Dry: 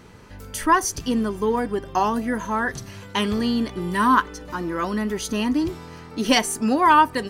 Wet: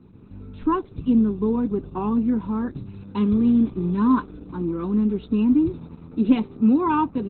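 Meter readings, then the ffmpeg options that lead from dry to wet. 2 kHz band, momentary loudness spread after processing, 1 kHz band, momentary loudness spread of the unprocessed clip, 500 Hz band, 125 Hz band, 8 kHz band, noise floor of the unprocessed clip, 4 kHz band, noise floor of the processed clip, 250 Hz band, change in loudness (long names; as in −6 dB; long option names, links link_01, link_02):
−15.5 dB, 11 LU, −9.0 dB, 10 LU, −3.0 dB, +4.0 dB, below −40 dB, −42 dBFS, below −15 dB, −46 dBFS, +4.5 dB, 0.0 dB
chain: -filter_complex "[0:a]firequalizer=gain_entry='entry(220,0);entry(780,-12);entry(1400,-22)':delay=0.05:min_phase=1,acrossover=split=180|2700[link_01][link_02][link_03];[link_03]acontrast=36[link_04];[link_01][link_02][link_04]amix=inputs=3:normalize=0,lowshelf=frequency=130:gain=-11,aecho=1:1:0.8:0.83,dynaudnorm=framelen=110:gausssize=3:maxgain=4.5dB" -ar 48000 -c:a libopus -b:a 8k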